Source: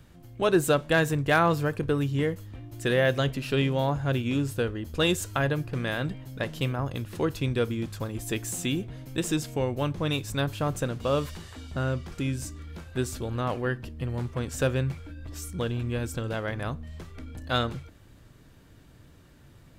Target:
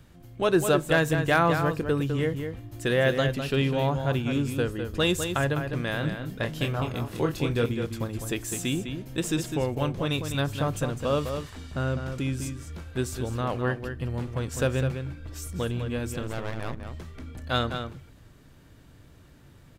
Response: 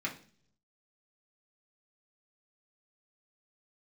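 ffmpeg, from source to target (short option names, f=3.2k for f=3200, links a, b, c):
-filter_complex "[0:a]asettb=1/sr,asplit=3[a][b][c];[a]atrim=end=6.004[d];[b]atrim=start=6:end=7.66,asetpts=PTS-STARTPTS,afade=t=in:d=0.004:c=qsin,afade=t=out:st=1.656:d=0.004:c=qsin,asplit=2[e][f];[f]adelay=26,volume=-4.5dB[g];[e][g]amix=inputs=2:normalize=0,atrim=end_sample=73206[h];[c]atrim=start=7.656[i];[d][h]acrossfade=d=0.004:c1=hsin:c2=qsin[j];[j][i]acrossfade=d=0.004:c1=qsin:c2=hsin,asettb=1/sr,asplit=3[k][l][m];[k]atrim=end=16.224[n];[l]atrim=start=16.22:end=16.8,asetpts=PTS-STARTPTS,afade=t=in:d=0.004:c=qsin,afade=t=out:st=0.576:d=0.004:c=qsin,aeval=exprs='max(val(0),0)':c=same[o];[m]atrim=start=16.796[p];[n][o]acrossfade=d=0.004:c1=hsin:c2=qsin[q];[q][p]acrossfade=d=0.004:c1=qsin:c2=hsin,asplit=2[r][s];[s]adelay=204.1,volume=-7dB,highshelf=f=4k:g=-4.59[t];[r][t]amix=inputs=2:normalize=0"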